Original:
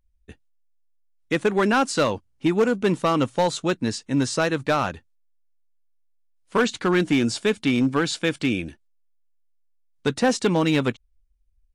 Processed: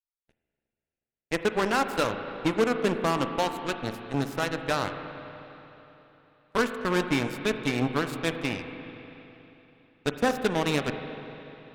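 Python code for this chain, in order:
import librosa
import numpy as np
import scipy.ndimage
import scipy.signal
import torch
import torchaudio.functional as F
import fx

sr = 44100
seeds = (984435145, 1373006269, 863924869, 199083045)

y = fx.cheby_harmonics(x, sr, harmonics=(3, 6, 7), levels_db=(-10, -26, -44), full_scale_db=-12.5)
y = fx.rev_spring(y, sr, rt60_s=3.4, pass_ms=(36, 40, 49), chirp_ms=60, drr_db=7.0)
y = y * librosa.db_to_amplitude(-3.5)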